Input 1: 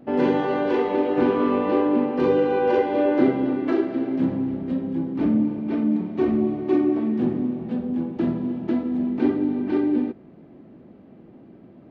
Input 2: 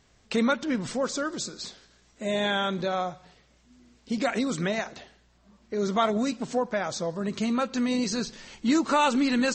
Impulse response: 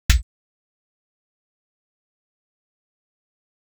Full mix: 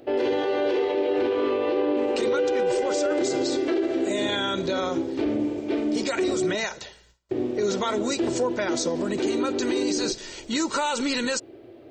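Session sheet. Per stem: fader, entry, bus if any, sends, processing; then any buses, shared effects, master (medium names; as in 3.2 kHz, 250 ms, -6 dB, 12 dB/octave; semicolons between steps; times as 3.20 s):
-1.0 dB, 0.00 s, muted 6.55–7.31 s, no send, FFT filter 120 Hz 0 dB, 180 Hz -22 dB, 350 Hz +8 dB, 640 Hz +6 dB, 990 Hz -1 dB, 3.8 kHz +13 dB
+1.5 dB, 1.85 s, no send, gate with hold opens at -52 dBFS; treble shelf 3.1 kHz +8.5 dB; comb 2.1 ms, depth 51%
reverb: none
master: peak limiter -16.5 dBFS, peak gain reduction 12.5 dB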